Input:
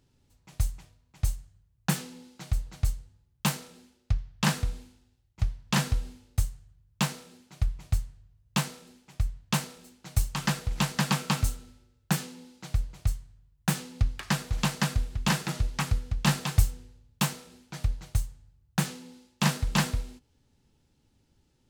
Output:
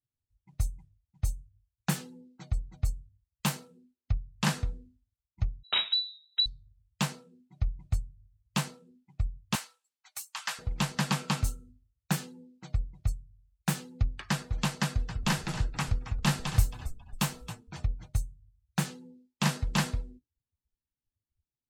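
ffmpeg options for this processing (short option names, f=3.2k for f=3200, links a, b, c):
-filter_complex "[0:a]asettb=1/sr,asplit=3[a][b][c];[a]atrim=end=5.634[d];[b]atrim=start=5.63:end=6.46,asetpts=PTS-STARTPTS,afade=t=in:d=0.004:c=qsin,afade=t=out:st=0.826:d=0.004:c=qsin,lowpass=f=3.4k:t=q:w=0.5098,lowpass=f=3.4k:t=q:w=0.6013,lowpass=f=3.4k:t=q:w=0.9,lowpass=f=3.4k:t=q:w=2.563,afreqshift=-4000[e];[c]atrim=start=6.456[f];[d][e]acrossfade=d=0.004:c1=hsin:c2=qsin[g];[g][f]acrossfade=d=0.004:c1=qsin:c2=hsin,asettb=1/sr,asplit=3[h][i][j];[h]atrim=end=9.554[k];[i]atrim=start=9.55:end=10.59,asetpts=PTS-STARTPTS,afade=t=in:d=0.004:c=qsin,afade=t=out:st=1.036:d=0.004:c=qsin,highpass=980[l];[j]atrim=start=10.586[m];[k][l]acrossfade=d=0.004:c1=hsin:c2=qsin[n];[n][m]acrossfade=d=0.004:c1=qsin:c2=hsin,asettb=1/sr,asplit=3[o][p][q];[o]atrim=end=14.724[r];[p]atrim=start=14.72:end=18.08,asetpts=PTS-STARTPTS,afade=t=in:d=0.004:c=qsin,afade=t=out:st=3.356:d=0.004:c=qsin,asplit=5[s][t][u][v][w];[t]adelay=272,afreqshift=-33,volume=-11.5dB[x];[u]adelay=544,afreqshift=-66,volume=-18.6dB[y];[v]adelay=816,afreqshift=-99,volume=-25.8dB[z];[w]adelay=1088,afreqshift=-132,volume=-32.9dB[aa];[s][x][y][z][aa]amix=inputs=5:normalize=0,atrim=end_sample=148176[ab];[q]atrim=start=18.076[ac];[r][ab]acrossfade=d=0.004:c1=hsin:c2=qsin[ad];[ad][ac]acrossfade=d=0.004:c1=qsin:c2=hsin,afftdn=nr=29:nf=-47,volume=-2.5dB"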